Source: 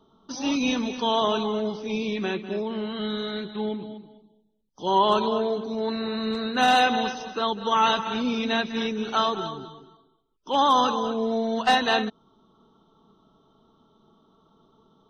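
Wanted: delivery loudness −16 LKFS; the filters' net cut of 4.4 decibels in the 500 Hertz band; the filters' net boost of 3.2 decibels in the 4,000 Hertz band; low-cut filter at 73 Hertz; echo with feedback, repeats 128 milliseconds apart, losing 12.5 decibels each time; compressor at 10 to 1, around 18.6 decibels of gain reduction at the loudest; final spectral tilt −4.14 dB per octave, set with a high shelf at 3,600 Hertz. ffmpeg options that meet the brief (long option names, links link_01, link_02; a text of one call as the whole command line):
ffmpeg -i in.wav -af "highpass=73,equalizer=frequency=500:width_type=o:gain=-5.5,highshelf=frequency=3600:gain=-8,equalizer=frequency=4000:width_type=o:gain=8.5,acompressor=threshold=-36dB:ratio=10,aecho=1:1:128|256|384:0.237|0.0569|0.0137,volume=23dB" out.wav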